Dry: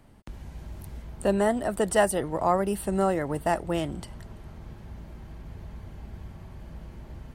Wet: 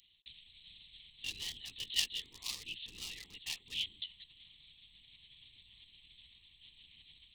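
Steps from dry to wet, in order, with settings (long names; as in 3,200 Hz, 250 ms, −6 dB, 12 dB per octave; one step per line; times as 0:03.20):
linear-prediction vocoder at 8 kHz whisper
in parallel at −4 dB: hard clipping −23.5 dBFS, distortion −8 dB
on the sum: inverse Chebyshev high-pass filter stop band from 1,600 Hz, stop band 50 dB
level +15.5 dB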